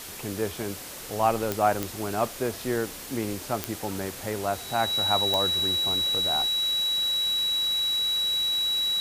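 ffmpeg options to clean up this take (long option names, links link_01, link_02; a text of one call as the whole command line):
ffmpeg -i in.wav -af "adeclick=threshold=4,bandreject=frequency=63.7:width_type=h:width=4,bandreject=frequency=127.4:width_type=h:width=4,bandreject=frequency=191.1:width_type=h:width=4,bandreject=frequency=3900:width=30,afwtdn=0.011" out.wav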